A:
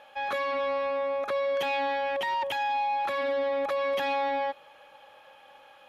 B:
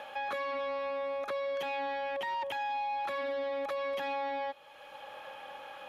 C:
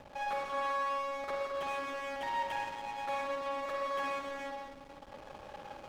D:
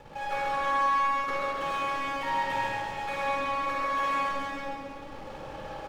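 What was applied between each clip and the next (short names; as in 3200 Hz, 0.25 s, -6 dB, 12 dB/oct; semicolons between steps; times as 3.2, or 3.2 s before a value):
three-band squash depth 70%; gain -6.5 dB
spring tank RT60 3.2 s, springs 41/53 ms, chirp 55 ms, DRR -3 dB; backlash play -35 dBFS; gain -3 dB
echo 0.133 s -5.5 dB; shoebox room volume 2100 m³, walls mixed, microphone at 4.2 m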